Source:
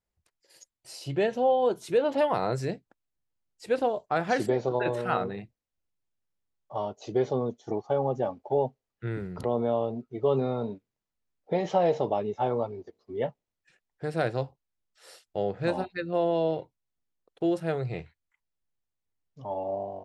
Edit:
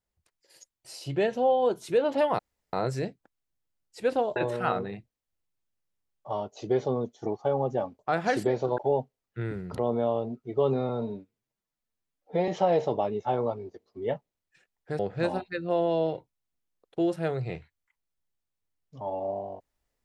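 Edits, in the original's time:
2.39 s: insert room tone 0.34 s
4.02–4.81 s: move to 8.44 s
10.55–11.61 s: stretch 1.5×
14.12–15.43 s: delete

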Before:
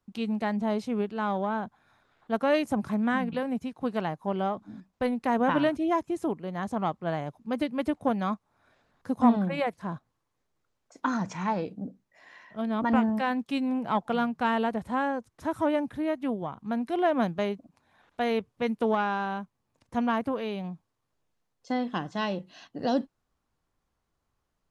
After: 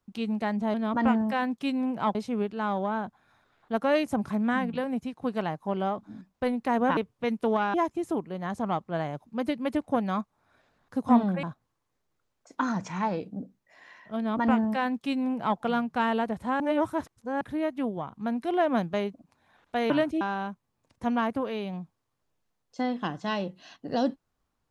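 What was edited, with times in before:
5.56–5.87 s: swap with 18.35–19.12 s
9.56–9.88 s: delete
12.62–14.03 s: copy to 0.74 s
15.05–15.86 s: reverse

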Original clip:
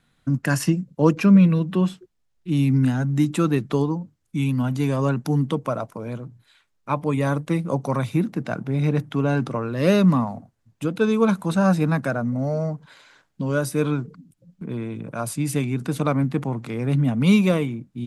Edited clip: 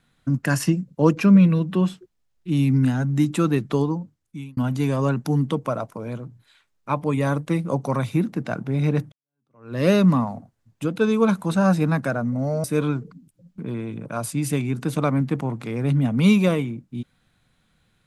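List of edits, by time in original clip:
3.99–4.57 s: fade out
9.12–9.75 s: fade in exponential
12.64–13.67 s: delete

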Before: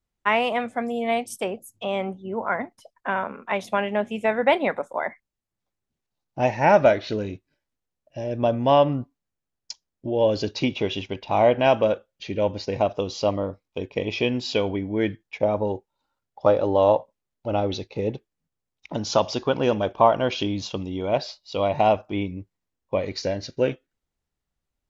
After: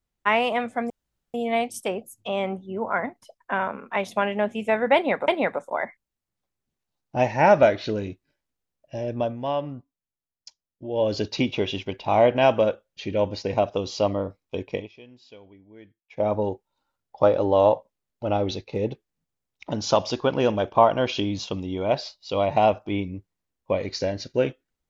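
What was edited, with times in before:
0.90 s: insert room tone 0.44 s
4.51–4.84 s: loop, 2 plays
8.25–10.41 s: dip -9.5 dB, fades 0.37 s
13.94–15.50 s: dip -24 dB, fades 0.18 s

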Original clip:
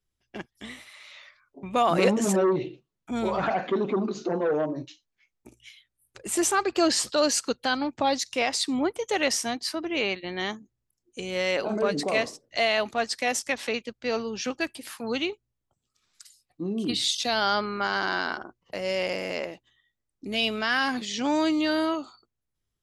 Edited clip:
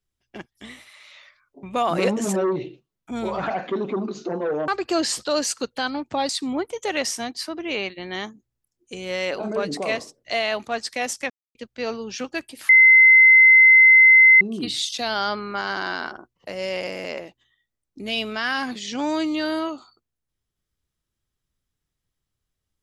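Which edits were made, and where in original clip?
4.68–6.55 s: delete
8.16–8.55 s: delete
13.56–13.81 s: mute
14.95–16.67 s: bleep 2.06 kHz -8 dBFS

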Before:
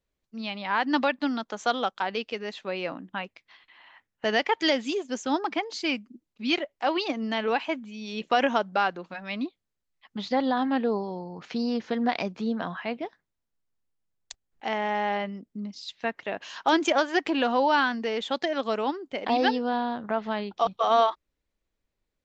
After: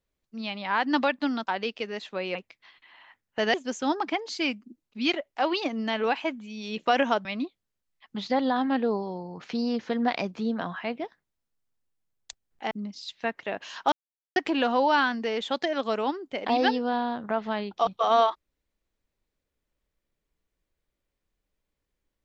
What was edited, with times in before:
1.47–1.99 s: delete
2.87–3.21 s: delete
4.40–4.98 s: delete
8.69–9.26 s: delete
14.72–15.51 s: delete
16.72–17.16 s: mute

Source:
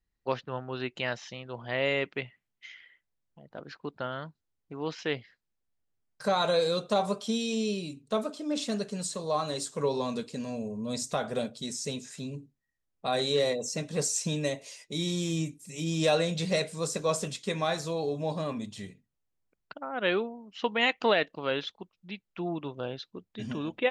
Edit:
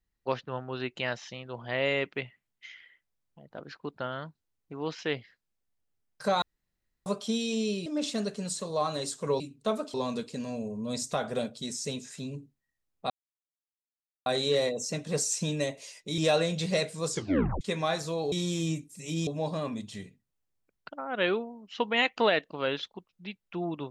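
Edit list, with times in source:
6.42–7.06 s: room tone
7.86–8.40 s: move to 9.94 s
13.10 s: insert silence 1.16 s
15.02–15.97 s: move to 18.11 s
16.89 s: tape stop 0.51 s

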